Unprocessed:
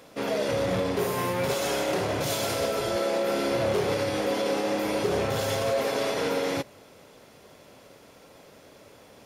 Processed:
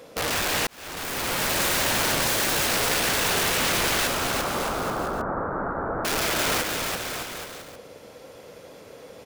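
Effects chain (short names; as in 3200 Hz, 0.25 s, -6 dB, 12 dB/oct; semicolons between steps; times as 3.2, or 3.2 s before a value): bell 490 Hz +9 dB 0.27 oct; wrapped overs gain 23 dB; 4.07–6.05 elliptic low-pass 1400 Hz, stop band 50 dB; bouncing-ball echo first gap 0.34 s, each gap 0.8×, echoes 5; 0.67–1.6 fade in; gain +2 dB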